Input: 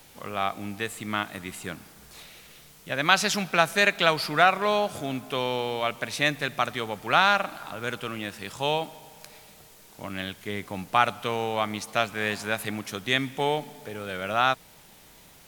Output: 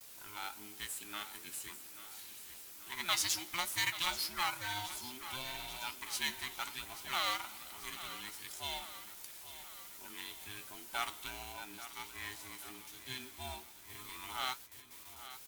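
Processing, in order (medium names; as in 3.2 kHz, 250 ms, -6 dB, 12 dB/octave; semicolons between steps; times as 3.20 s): every band turned upside down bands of 500 Hz; pre-emphasis filter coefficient 0.9; gate with hold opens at -42 dBFS; 11.52–13.90 s: harmonic-percussive split percussive -14 dB; flange 1.3 Hz, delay 7.3 ms, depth 5.8 ms, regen +68%; companded quantiser 4-bit; feedback delay 836 ms, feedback 59%, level -13.5 dB; trim +1.5 dB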